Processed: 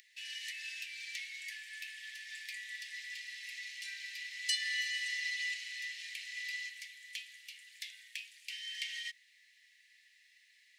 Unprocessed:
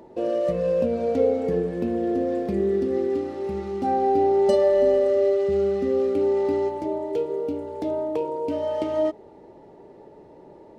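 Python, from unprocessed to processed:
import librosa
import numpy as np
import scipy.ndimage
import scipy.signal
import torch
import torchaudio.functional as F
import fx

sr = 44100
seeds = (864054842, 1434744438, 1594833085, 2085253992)

y = fx.comb(x, sr, ms=5.5, depth=0.9, at=(4.65, 5.54))
y = scipy.signal.sosfilt(scipy.signal.butter(16, 1800.0, 'highpass', fs=sr, output='sos'), y)
y = y * 10.0 ** (8.0 / 20.0)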